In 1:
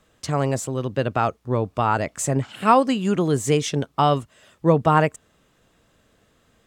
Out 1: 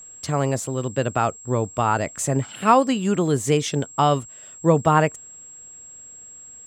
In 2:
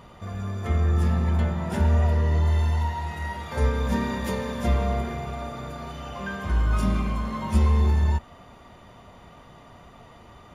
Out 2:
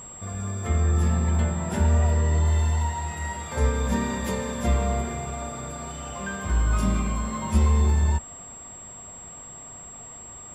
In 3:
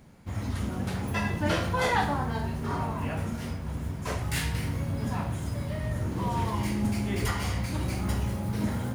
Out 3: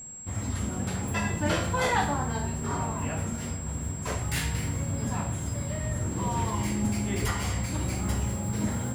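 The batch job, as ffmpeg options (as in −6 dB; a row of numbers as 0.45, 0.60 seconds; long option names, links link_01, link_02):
-af "aeval=exprs='val(0)+0.01*sin(2*PI*7600*n/s)':channel_layout=same"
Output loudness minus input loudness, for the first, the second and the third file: 0.0, 0.0, +0.5 LU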